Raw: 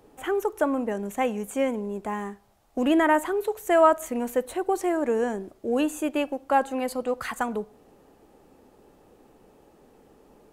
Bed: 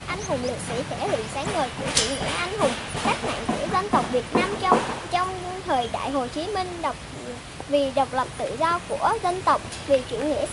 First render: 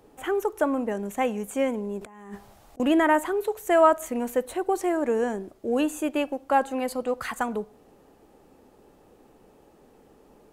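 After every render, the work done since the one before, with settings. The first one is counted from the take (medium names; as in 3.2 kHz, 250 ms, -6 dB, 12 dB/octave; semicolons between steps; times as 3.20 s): 2.01–2.80 s: compressor with a negative ratio -44 dBFS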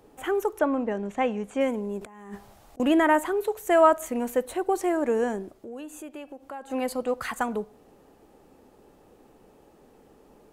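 0.59–1.61 s: low-pass 4.5 kHz; 5.57–6.70 s: compression 3:1, threshold -41 dBFS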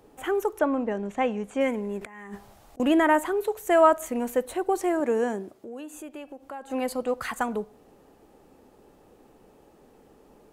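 1.64–2.26 s: peaking EQ 2 kHz +8 dB -> +14 dB 0.7 oct; 5.00–5.94 s: high-pass 110 Hz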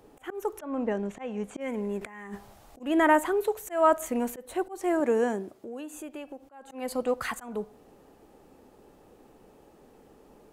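slow attack 244 ms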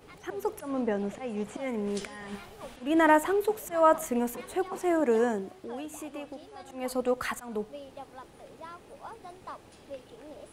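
add bed -22.5 dB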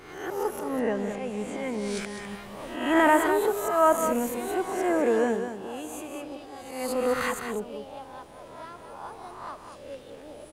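reverse spectral sustain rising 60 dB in 0.77 s; delay 203 ms -8 dB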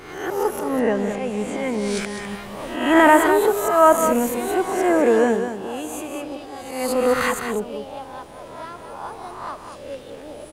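trim +7 dB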